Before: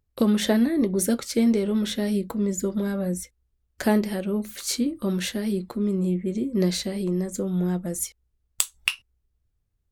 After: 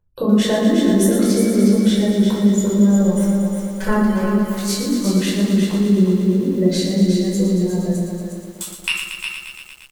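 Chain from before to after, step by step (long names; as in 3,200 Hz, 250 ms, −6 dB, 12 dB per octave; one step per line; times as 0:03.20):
0:02.97–0:04.24: lower of the sound and its delayed copy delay 5.2 ms
0:07.96–0:08.61: formant resonators in series u
gate on every frequency bin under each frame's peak −30 dB strong
on a send: single-tap delay 363 ms −7 dB
on the sum: rectangular room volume 690 cubic metres, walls furnished, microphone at 4.9 metres
feedback echo at a low word length 116 ms, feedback 80%, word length 7 bits, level −7.5 dB
level −2 dB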